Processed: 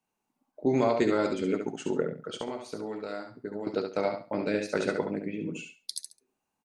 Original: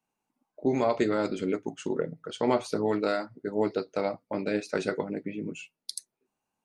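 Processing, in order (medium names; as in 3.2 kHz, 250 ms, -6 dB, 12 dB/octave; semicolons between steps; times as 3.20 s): 2.29–3.67 s: compression 10:1, threshold -33 dBFS, peak gain reduction 14.5 dB; feedback delay 69 ms, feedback 23%, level -6 dB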